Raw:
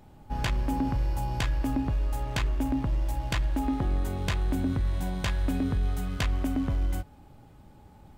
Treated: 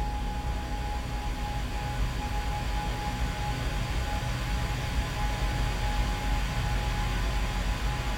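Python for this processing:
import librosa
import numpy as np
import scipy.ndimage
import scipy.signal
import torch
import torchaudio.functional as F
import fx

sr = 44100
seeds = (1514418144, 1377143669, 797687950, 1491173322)

y = np.clip(x, -10.0 ** (-25.0 / 20.0), 10.0 ** (-25.0 / 20.0))
y = fx.paulstretch(y, sr, seeds[0], factor=45.0, window_s=0.5, from_s=0.32)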